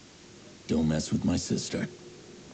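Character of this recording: a quantiser's noise floor 8-bit, dither triangular; A-law

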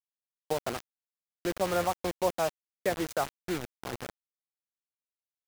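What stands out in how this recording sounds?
tremolo saw up 3.8 Hz, depth 35%; a quantiser's noise floor 6-bit, dither none

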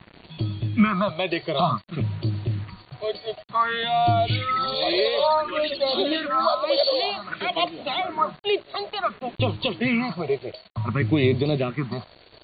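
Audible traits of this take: phasing stages 4, 0.55 Hz, lowest notch 210–1600 Hz; a quantiser's noise floor 8-bit, dither none; AC-3

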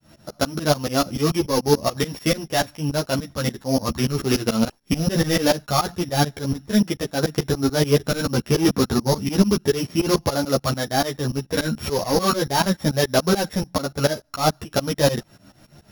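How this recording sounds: a buzz of ramps at a fixed pitch in blocks of 8 samples; tremolo saw up 6.9 Hz, depth 100%; a shimmering, thickened sound

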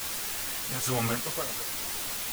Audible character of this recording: random-step tremolo, depth 90%; a quantiser's noise floor 6-bit, dither triangular; a shimmering, thickened sound

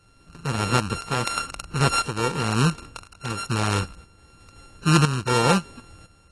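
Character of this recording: a buzz of ramps at a fixed pitch in blocks of 32 samples; tremolo saw up 0.99 Hz, depth 70%; AAC

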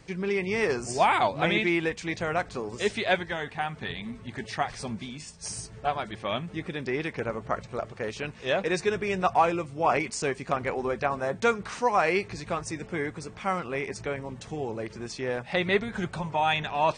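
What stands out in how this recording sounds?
noise floor -47 dBFS; spectral tilt -4.5 dB/octave

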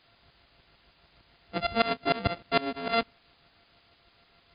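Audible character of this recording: a buzz of ramps at a fixed pitch in blocks of 64 samples; tremolo saw up 6.6 Hz, depth 95%; a quantiser's noise floor 10-bit, dither triangular; MP3

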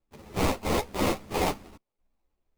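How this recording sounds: aliases and images of a low sample rate 1.6 kHz, jitter 20%; a shimmering, thickened sound

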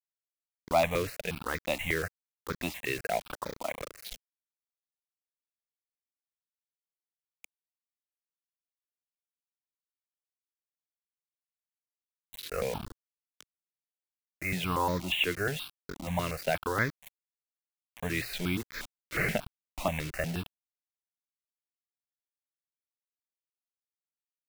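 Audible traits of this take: a quantiser's noise floor 6-bit, dither none; notches that jump at a steady rate 8.4 Hz 210–2800 Hz

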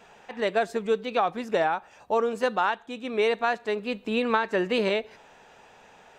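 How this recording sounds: noise floor -54 dBFS; spectral tilt -2.0 dB/octave

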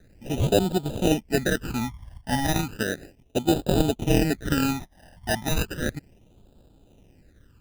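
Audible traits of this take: aliases and images of a low sample rate 1.1 kHz, jitter 0%; phasing stages 12, 0.34 Hz, lowest notch 410–2000 Hz

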